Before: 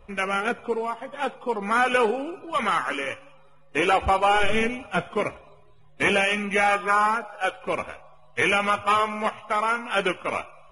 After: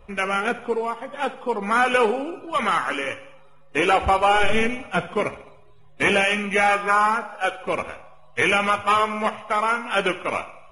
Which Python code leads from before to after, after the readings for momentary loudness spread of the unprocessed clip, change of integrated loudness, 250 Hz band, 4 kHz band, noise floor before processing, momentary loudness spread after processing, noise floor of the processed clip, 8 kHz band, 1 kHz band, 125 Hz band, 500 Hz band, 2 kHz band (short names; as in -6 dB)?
10 LU, +2.0 dB, +2.0 dB, +2.0 dB, -51 dBFS, 10 LU, -47 dBFS, +2.0 dB, +2.0 dB, +2.0 dB, +2.0 dB, +2.0 dB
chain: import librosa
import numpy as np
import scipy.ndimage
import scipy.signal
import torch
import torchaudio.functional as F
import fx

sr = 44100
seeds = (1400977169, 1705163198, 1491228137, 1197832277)

y = fx.echo_feedback(x, sr, ms=70, feedback_pct=50, wet_db=-16)
y = F.gain(torch.from_numpy(y), 2.0).numpy()